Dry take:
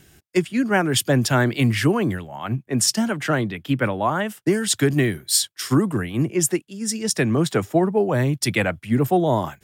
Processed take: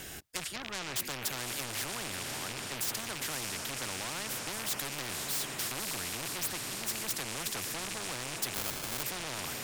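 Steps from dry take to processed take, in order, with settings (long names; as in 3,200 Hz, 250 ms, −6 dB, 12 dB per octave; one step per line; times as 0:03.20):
loose part that buzzes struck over −30 dBFS, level −21 dBFS
in parallel at 0 dB: downward compressor, threshold −25 dBFS, peak gain reduction 12 dB
0:00.56–0:00.96: on the sum: Butterworth low-pass 4,000 Hz 96 dB per octave
on a send: feedback delay with all-pass diffusion 551 ms, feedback 62%, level −13 dB
0:08.54–0:09.03: on the sum: sample-rate reduction 1,900 Hz, jitter 0%
low-shelf EQ 120 Hz +11 dB
soft clipping −16 dBFS, distortion −9 dB
every bin compressed towards the loudest bin 4 to 1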